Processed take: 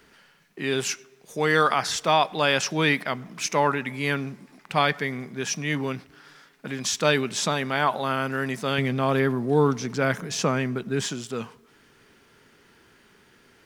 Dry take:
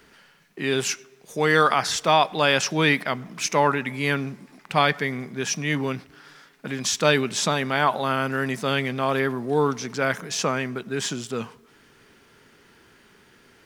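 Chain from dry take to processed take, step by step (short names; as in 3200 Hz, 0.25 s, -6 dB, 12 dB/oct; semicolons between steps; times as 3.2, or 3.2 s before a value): 8.78–11.05 low shelf 330 Hz +8 dB; gain -2 dB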